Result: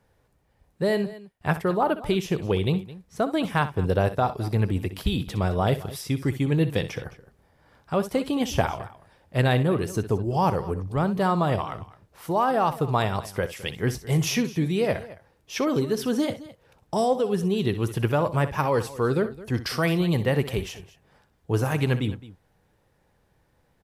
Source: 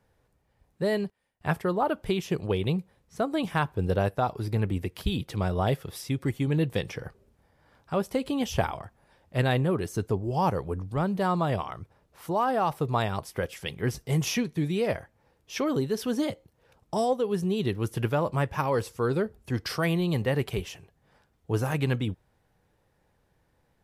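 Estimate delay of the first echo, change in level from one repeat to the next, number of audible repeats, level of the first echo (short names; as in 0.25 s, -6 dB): 63 ms, no steady repeat, 2, -13.5 dB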